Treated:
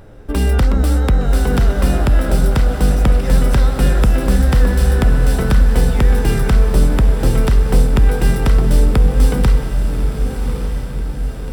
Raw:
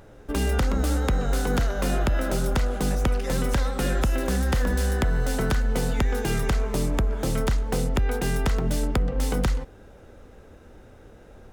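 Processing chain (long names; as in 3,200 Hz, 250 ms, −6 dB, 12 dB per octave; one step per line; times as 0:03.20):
low-shelf EQ 200 Hz +6.5 dB
notch filter 6,600 Hz, Q 6.3
feedback delay with all-pass diffusion 1,170 ms, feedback 53%, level −7 dB
level +4.5 dB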